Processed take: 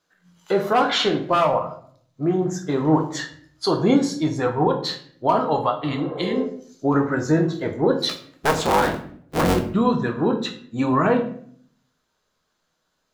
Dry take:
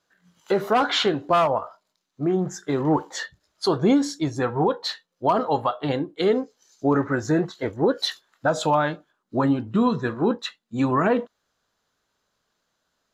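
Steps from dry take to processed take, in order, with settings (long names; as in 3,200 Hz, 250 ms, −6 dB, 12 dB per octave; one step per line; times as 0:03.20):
0:08.09–0:09.59: sub-harmonics by changed cycles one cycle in 3, inverted
rectangular room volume 82 cubic metres, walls mixed, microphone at 0.51 metres
0:05.86–0:06.37: healed spectral selection 380–1,700 Hz both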